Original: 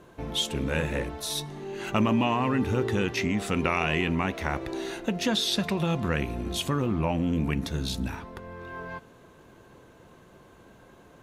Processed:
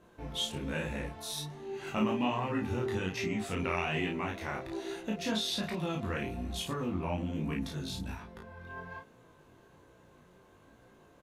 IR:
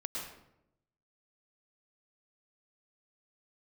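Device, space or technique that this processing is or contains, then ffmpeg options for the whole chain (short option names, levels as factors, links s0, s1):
double-tracked vocal: -filter_complex "[0:a]asplit=2[s0][s1];[s1]adelay=33,volume=0.708[s2];[s0][s2]amix=inputs=2:normalize=0,flanger=delay=17.5:depth=5.4:speed=1.2,volume=0.531"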